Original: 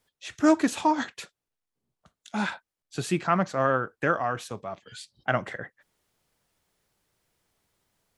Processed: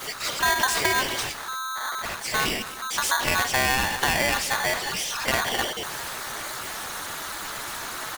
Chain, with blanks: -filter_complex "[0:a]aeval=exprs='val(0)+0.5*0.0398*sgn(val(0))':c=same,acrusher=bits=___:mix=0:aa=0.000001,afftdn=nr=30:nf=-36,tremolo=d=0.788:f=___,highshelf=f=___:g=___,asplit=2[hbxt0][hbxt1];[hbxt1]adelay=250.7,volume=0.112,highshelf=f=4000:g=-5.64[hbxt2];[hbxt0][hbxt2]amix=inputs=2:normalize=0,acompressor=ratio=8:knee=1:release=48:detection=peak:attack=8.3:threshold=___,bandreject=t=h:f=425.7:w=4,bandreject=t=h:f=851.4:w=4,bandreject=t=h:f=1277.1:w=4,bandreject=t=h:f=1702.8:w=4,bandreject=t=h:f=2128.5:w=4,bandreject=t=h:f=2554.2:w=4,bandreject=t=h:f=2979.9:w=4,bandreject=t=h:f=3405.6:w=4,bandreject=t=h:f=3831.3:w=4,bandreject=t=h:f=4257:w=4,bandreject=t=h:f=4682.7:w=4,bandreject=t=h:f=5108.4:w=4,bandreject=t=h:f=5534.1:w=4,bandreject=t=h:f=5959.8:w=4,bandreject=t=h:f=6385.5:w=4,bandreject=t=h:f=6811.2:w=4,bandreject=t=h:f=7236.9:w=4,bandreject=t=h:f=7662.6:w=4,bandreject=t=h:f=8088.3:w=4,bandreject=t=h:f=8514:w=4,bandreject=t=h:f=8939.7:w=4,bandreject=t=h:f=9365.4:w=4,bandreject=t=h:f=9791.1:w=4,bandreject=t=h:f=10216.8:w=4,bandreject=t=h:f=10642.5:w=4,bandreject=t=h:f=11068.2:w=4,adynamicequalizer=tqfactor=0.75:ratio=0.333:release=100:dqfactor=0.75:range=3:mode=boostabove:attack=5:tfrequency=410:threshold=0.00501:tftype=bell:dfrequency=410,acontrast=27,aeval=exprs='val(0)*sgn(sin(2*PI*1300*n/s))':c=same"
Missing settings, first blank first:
7, 270, 3100, 6.5, 0.0355